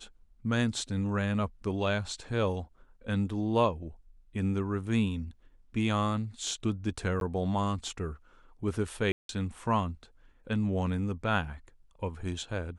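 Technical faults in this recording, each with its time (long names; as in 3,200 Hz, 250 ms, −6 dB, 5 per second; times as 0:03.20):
0:07.20–0:07.21: drop-out 12 ms
0:09.12–0:09.29: drop-out 172 ms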